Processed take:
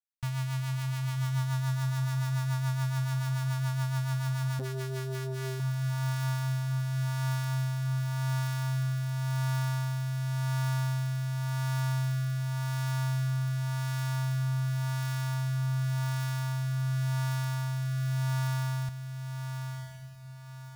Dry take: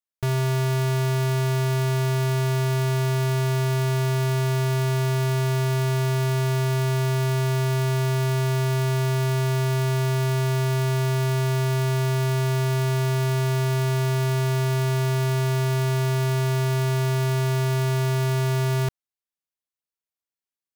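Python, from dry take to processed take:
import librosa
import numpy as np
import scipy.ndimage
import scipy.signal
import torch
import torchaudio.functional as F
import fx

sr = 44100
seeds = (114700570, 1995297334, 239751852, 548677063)

y = scipy.signal.sosfilt(scipy.signal.cheby1(3, 1.0, [280.0, 740.0], 'bandstop', fs=sr, output='sos'), x)
y = fx.echo_diffused(y, sr, ms=1108, feedback_pct=41, wet_db=-7.0)
y = fx.rotary_switch(y, sr, hz=7.0, then_hz=0.9, switch_at_s=4.77)
y = fx.transformer_sat(y, sr, knee_hz=450.0, at=(4.59, 5.6))
y = y * librosa.db_to_amplitude(-6.5)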